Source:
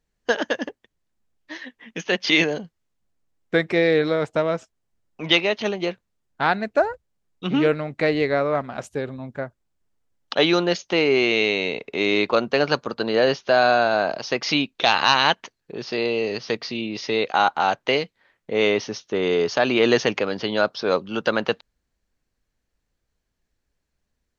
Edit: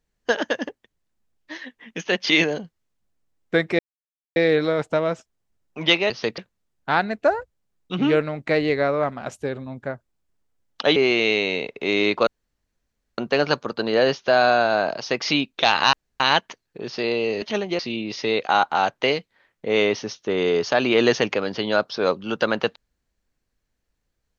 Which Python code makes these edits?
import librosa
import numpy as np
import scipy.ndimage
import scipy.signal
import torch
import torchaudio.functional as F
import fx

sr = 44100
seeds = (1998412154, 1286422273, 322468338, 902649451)

y = fx.edit(x, sr, fx.insert_silence(at_s=3.79, length_s=0.57),
    fx.swap(start_s=5.53, length_s=0.37, other_s=16.36, other_length_s=0.28),
    fx.cut(start_s=10.48, length_s=0.6),
    fx.insert_room_tone(at_s=12.39, length_s=0.91),
    fx.insert_room_tone(at_s=15.14, length_s=0.27), tone=tone)